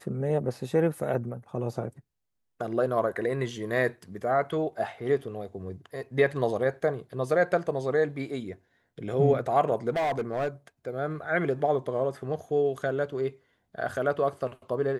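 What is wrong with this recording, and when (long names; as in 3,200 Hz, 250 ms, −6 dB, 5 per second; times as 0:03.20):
0:09.89–0:10.48: clipping −24 dBFS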